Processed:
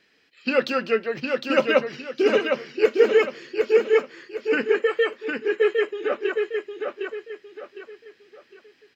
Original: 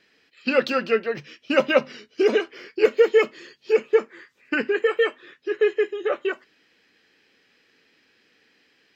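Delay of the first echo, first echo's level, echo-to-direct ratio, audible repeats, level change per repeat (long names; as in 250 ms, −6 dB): 758 ms, −4.5 dB, −4.0 dB, 4, −9.5 dB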